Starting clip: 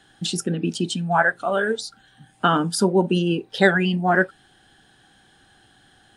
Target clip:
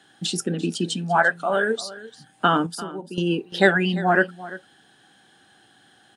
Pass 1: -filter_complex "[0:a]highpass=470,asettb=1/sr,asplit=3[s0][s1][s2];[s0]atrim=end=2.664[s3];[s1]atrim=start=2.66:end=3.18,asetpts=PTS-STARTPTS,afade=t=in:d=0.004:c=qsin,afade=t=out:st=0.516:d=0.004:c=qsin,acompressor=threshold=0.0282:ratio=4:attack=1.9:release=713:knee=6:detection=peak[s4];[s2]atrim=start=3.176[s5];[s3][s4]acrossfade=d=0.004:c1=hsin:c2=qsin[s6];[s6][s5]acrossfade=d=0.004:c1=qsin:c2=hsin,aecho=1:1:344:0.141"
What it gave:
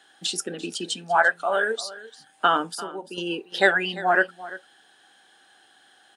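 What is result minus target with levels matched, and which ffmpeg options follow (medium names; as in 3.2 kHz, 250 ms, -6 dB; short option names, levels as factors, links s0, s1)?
125 Hz band -13.0 dB
-filter_complex "[0:a]highpass=160,asettb=1/sr,asplit=3[s0][s1][s2];[s0]atrim=end=2.664[s3];[s1]atrim=start=2.66:end=3.18,asetpts=PTS-STARTPTS,afade=t=in:d=0.004:c=qsin,afade=t=out:st=0.516:d=0.004:c=qsin,acompressor=threshold=0.0282:ratio=4:attack=1.9:release=713:knee=6:detection=peak[s4];[s2]atrim=start=3.176[s5];[s3][s4]acrossfade=d=0.004:c1=hsin:c2=qsin[s6];[s6][s5]acrossfade=d=0.004:c1=qsin:c2=hsin,aecho=1:1:344:0.141"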